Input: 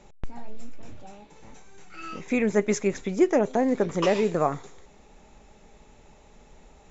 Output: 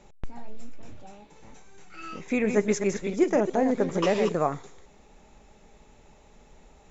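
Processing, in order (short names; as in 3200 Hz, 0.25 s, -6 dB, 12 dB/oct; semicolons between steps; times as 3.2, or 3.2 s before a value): 2.31–4.32 reverse delay 0.132 s, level -7 dB; gain -1.5 dB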